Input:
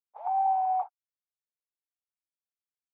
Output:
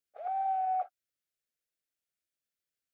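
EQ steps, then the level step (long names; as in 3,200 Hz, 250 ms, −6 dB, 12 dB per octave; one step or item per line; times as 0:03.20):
Chebyshev band-stop filter 640–1,400 Hz, order 2
+5.0 dB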